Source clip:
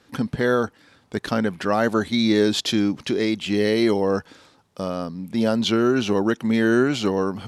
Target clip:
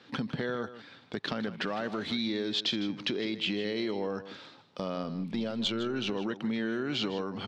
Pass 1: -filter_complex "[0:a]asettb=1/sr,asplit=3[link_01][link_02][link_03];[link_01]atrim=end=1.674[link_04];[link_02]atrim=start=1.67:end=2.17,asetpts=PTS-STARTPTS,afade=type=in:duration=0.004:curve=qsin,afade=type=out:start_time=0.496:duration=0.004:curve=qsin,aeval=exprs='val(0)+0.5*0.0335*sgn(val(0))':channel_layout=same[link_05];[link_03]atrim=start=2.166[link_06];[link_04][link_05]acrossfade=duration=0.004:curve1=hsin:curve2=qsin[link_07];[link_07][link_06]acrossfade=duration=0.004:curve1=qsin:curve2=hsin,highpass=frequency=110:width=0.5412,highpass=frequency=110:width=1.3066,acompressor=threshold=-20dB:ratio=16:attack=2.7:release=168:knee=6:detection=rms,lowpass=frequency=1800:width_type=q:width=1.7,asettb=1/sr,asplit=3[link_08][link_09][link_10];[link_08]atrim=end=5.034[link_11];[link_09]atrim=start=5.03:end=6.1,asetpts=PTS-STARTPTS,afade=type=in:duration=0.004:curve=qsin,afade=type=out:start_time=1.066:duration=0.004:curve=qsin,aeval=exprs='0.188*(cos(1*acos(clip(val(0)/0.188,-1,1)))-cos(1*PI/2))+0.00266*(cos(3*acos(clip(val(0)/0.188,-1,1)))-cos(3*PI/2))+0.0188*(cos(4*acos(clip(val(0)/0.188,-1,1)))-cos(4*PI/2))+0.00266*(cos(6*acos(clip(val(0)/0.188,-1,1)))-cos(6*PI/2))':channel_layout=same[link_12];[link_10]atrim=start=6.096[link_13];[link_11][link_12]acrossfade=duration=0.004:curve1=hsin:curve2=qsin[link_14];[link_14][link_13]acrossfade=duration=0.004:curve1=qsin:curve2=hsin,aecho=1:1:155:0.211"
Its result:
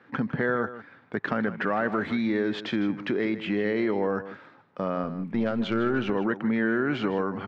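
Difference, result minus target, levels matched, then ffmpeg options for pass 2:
4,000 Hz band −13.5 dB; downward compressor: peak gain reduction −6.5 dB
-filter_complex "[0:a]asettb=1/sr,asplit=3[link_01][link_02][link_03];[link_01]atrim=end=1.674[link_04];[link_02]atrim=start=1.67:end=2.17,asetpts=PTS-STARTPTS,afade=type=in:duration=0.004:curve=qsin,afade=type=out:start_time=0.496:duration=0.004:curve=qsin,aeval=exprs='val(0)+0.5*0.0335*sgn(val(0))':channel_layout=same[link_05];[link_03]atrim=start=2.166[link_06];[link_04][link_05]acrossfade=duration=0.004:curve1=hsin:curve2=qsin[link_07];[link_07][link_06]acrossfade=duration=0.004:curve1=qsin:curve2=hsin,highpass=frequency=110:width=0.5412,highpass=frequency=110:width=1.3066,acompressor=threshold=-27dB:ratio=16:attack=2.7:release=168:knee=6:detection=rms,lowpass=frequency=3800:width_type=q:width=1.7,asettb=1/sr,asplit=3[link_08][link_09][link_10];[link_08]atrim=end=5.034[link_11];[link_09]atrim=start=5.03:end=6.1,asetpts=PTS-STARTPTS,afade=type=in:duration=0.004:curve=qsin,afade=type=out:start_time=1.066:duration=0.004:curve=qsin,aeval=exprs='0.188*(cos(1*acos(clip(val(0)/0.188,-1,1)))-cos(1*PI/2))+0.00266*(cos(3*acos(clip(val(0)/0.188,-1,1)))-cos(3*PI/2))+0.0188*(cos(4*acos(clip(val(0)/0.188,-1,1)))-cos(4*PI/2))+0.00266*(cos(6*acos(clip(val(0)/0.188,-1,1)))-cos(6*PI/2))':channel_layout=same[link_12];[link_10]atrim=start=6.096[link_13];[link_11][link_12]acrossfade=duration=0.004:curve1=hsin:curve2=qsin[link_14];[link_14][link_13]acrossfade=duration=0.004:curve1=qsin:curve2=hsin,aecho=1:1:155:0.211"

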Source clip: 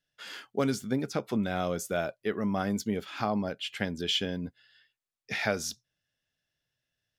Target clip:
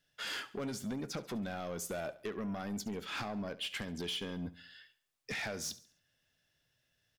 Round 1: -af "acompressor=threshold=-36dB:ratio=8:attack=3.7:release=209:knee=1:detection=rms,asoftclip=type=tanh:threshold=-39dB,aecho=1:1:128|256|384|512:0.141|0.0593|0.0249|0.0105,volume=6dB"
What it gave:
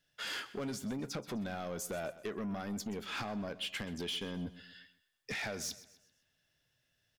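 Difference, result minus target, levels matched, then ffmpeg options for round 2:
echo 59 ms late
-af "acompressor=threshold=-36dB:ratio=8:attack=3.7:release=209:knee=1:detection=rms,asoftclip=type=tanh:threshold=-39dB,aecho=1:1:69|138|207|276:0.141|0.0593|0.0249|0.0105,volume=6dB"

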